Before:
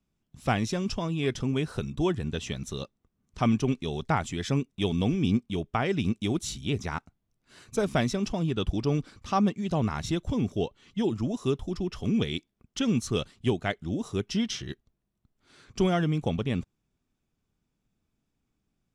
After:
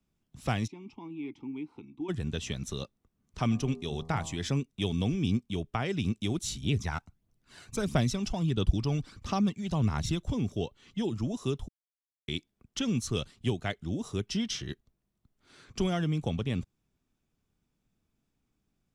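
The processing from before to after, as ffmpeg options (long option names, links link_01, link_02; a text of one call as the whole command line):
ffmpeg -i in.wav -filter_complex "[0:a]asplit=3[link_01][link_02][link_03];[link_01]afade=type=out:start_time=0.66:duration=0.02[link_04];[link_02]asplit=3[link_05][link_06][link_07];[link_05]bandpass=frequency=300:width_type=q:width=8,volume=0dB[link_08];[link_06]bandpass=frequency=870:width_type=q:width=8,volume=-6dB[link_09];[link_07]bandpass=frequency=2240:width_type=q:width=8,volume=-9dB[link_10];[link_08][link_09][link_10]amix=inputs=3:normalize=0,afade=type=in:start_time=0.66:duration=0.02,afade=type=out:start_time=2.08:duration=0.02[link_11];[link_03]afade=type=in:start_time=2.08:duration=0.02[link_12];[link_04][link_11][link_12]amix=inputs=3:normalize=0,asplit=3[link_13][link_14][link_15];[link_13]afade=type=out:start_time=3.5:duration=0.02[link_16];[link_14]bandreject=frequency=80.14:width_type=h:width=4,bandreject=frequency=160.28:width_type=h:width=4,bandreject=frequency=240.42:width_type=h:width=4,bandreject=frequency=320.56:width_type=h:width=4,bandreject=frequency=400.7:width_type=h:width=4,bandreject=frequency=480.84:width_type=h:width=4,bandreject=frequency=560.98:width_type=h:width=4,bandreject=frequency=641.12:width_type=h:width=4,bandreject=frequency=721.26:width_type=h:width=4,bandreject=frequency=801.4:width_type=h:width=4,bandreject=frequency=881.54:width_type=h:width=4,bandreject=frequency=961.68:width_type=h:width=4,bandreject=frequency=1041.82:width_type=h:width=4,bandreject=frequency=1121.96:width_type=h:width=4,bandreject=frequency=1202.1:width_type=h:width=4,afade=type=in:start_time=3.5:duration=0.02,afade=type=out:start_time=4.47:duration=0.02[link_17];[link_15]afade=type=in:start_time=4.47:duration=0.02[link_18];[link_16][link_17][link_18]amix=inputs=3:normalize=0,asettb=1/sr,asplit=3[link_19][link_20][link_21];[link_19]atrim=end=6.634[link_22];[link_20]atrim=start=6.63:end=10.19,asetpts=PTS-STARTPTS,afade=type=in:duration=0.004:curve=qsin,afade=type=out:start_time=3.556:duration=0.004:curve=qsin,aphaser=in_gain=1:out_gain=1:delay=1.5:decay=0.43:speed=1.5:type=triangular[link_23];[link_21]atrim=start=10.186[link_24];[link_22][link_23]acrossfade=duration=0.004:curve1=hsin:curve2=qsin[link_25];[link_25][link_24]acrossfade=duration=0.004:curve1=qsin:curve2=hsin,asplit=3[link_26][link_27][link_28];[link_26]atrim=end=11.68,asetpts=PTS-STARTPTS,afade=type=out:start_time=11.676:duration=0.004:curve=hsin[link_29];[link_27]atrim=start=11.68:end=12.28,asetpts=PTS-STARTPTS,volume=0[link_30];[link_28]atrim=start=12.28,asetpts=PTS-STARTPTS,afade=type=in:duration=0.004:curve=hsin[link_31];[link_29][link_30][link_31]concat=n=3:v=0:a=1,acrossover=split=150|3000[link_32][link_33][link_34];[link_33]acompressor=threshold=-39dB:ratio=1.5[link_35];[link_32][link_35][link_34]amix=inputs=3:normalize=0" out.wav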